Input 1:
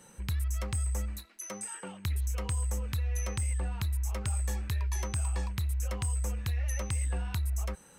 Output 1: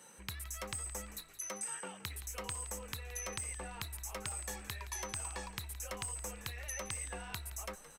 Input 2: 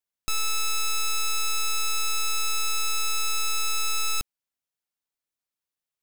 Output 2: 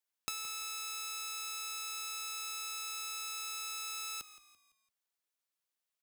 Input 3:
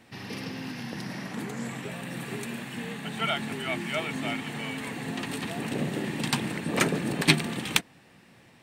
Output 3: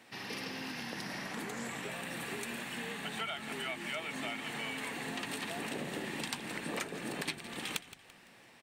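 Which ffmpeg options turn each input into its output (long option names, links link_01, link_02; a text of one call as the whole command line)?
ffmpeg -i in.wav -filter_complex "[0:a]highpass=frequency=480:poles=1,acompressor=threshold=-35dB:ratio=10,asplit=2[link_01][link_02];[link_02]asplit=4[link_03][link_04][link_05][link_06];[link_03]adelay=169,afreqshift=-52,volume=-15.5dB[link_07];[link_04]adelay=338,afreqshift=-104,volume=-23.2dB[link_08];[link_05]adelay=507,afreqshift=-156,volume=-31dB[link_09];[link_06]adelay=676,afreqshift=-208,volume=-38.7dB[link_10];[link_07][link_08][link_09][link_10]amix=inputs=4:normalize=0[link_11];[link_01][link_11]amix=inputs=2:normalize=0" out.wav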